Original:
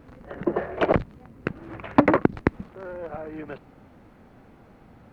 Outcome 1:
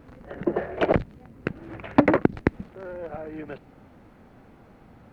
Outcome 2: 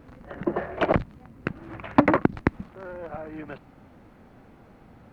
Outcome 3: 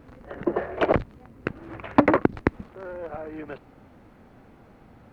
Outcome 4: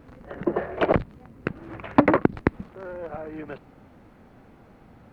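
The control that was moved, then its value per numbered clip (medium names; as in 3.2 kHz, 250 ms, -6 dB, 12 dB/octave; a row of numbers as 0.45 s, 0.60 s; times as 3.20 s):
dynamic bell, frequency: 1.1 kHz, 440 Hz, 170 Hz, 6.1 kHz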